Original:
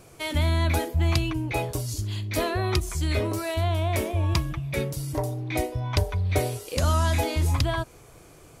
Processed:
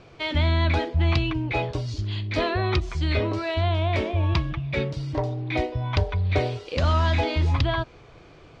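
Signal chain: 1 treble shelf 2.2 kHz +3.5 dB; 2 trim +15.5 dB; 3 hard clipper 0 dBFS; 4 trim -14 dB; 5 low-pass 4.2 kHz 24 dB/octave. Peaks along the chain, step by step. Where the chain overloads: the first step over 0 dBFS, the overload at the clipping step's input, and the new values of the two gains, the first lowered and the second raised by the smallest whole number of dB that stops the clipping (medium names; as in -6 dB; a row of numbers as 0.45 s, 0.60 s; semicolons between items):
-8.5 dBFS, +7.0 dBFS, 0.0 dBFS, -14.0 dBFS, -12.5 dBFS; step 2, 7.0 dB; step 2 +8.5 dB, step 4 -7 dB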